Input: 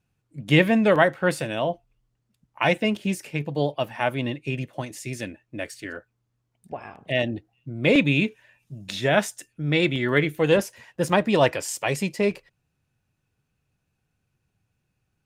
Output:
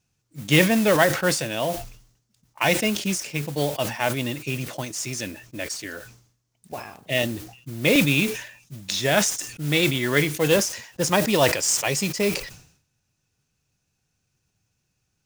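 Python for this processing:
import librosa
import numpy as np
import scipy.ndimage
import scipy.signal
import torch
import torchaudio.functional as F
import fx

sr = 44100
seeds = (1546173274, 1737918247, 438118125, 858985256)

y = fx.peak_eq(x, sr, hz=6000.0, db=14.0, octaves=1.1)
y = fx.mod_noise(y, sr, seeds[0], snr_db=14)
y = fx.sustainer(y, sr, db_per_s=92.0)
y = y * librosa.db_to_amplitude(-1.0)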